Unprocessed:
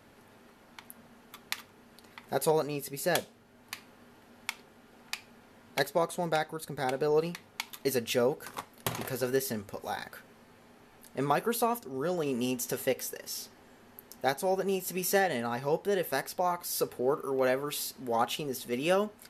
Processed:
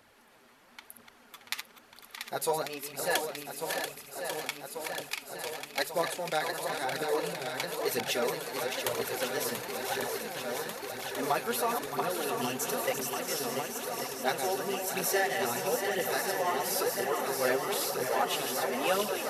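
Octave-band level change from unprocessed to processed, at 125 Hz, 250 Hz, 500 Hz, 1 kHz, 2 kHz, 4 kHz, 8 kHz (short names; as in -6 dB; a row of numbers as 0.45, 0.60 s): -6.0, -3.5, -1.0, +1.5, +3.5, +4.0, +4.0 dB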